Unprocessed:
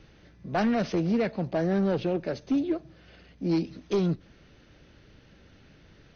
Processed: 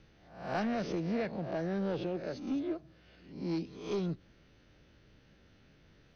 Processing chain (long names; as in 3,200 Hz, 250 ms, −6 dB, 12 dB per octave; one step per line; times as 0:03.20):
peak hold with a rise ahead of every peak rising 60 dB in 0.56 s
level −9 dB